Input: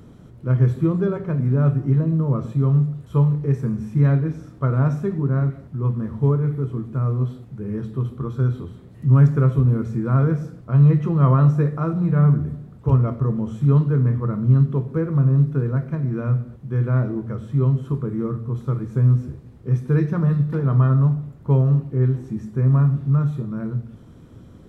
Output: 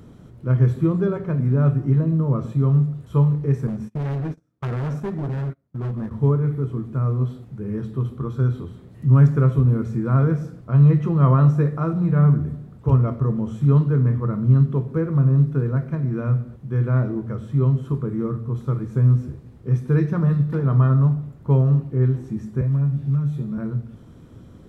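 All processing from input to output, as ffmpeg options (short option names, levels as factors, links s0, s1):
-filter_complex "[0:a]asettb=1/sr,asplit=3[s0][s1][s2];[s0]atrim=end=3.674[s3];[s1]atrim=start=3.67:end=6.11,asetpts=PTS-STARTPTS,afade=t=in:d=0.004:c=qsin,afade=t=out:st=2.436:d=0.004:c=qsin,highpass=f=93:p=1,asoftclip=type=hard:threshold=0.0708,agate=range=0.0355:threshold=0.0251:ratio=16:release=100:detection=peak[s4];[s2]atrim=start=6.106[s5];[s3][s4]acrossfade=d=0.004:c1=hsin:c2=qsin[s6];[s6][s5]acrossfade=d=0.004:c1=qsin:c2=hsin,asettb=1/sr,asplit=3[s7][s8][s9];[s7]atrim=end=22.614[s10];[s8]atrim=start=22.61:end=23.58,asetpts=PTS-STARTPTS,afade=t=in:d=0.004:c=qsin,afade=t=out:st=0.966:d=0.004:c=qsin,equalizer=f=1200:w=3.1:g=-7,acrossover=split=150|780|1600[s11][s12][s13][s14];[s11]acompressor=threshold=0.0355:ratio=3[s15];[s12]acompressor=threshold=0.0251:ratio=3[s16];[s13]acompressor=threshold=0.00141:ratio=3[s17];[s14]acompressor=threshold=0.00141:ratio=3[s18];[s15][s16][s17][s18]amix=inputs=4:normalize=0,asplit=2[s19][s20];[s20]adelay=14,volume=0.708[s21];[s19][s21]amix=inputs=2:normalize=0,atrim=end_sample=42777[s22];[s9]atrim=start=23.576[s23];[s10][s22]acrossfade=d=0.004:c1=hsin:c2=qsin[s24];[s24][s23]acrossfade=d=0.004:c1=qsin:c2=hsin"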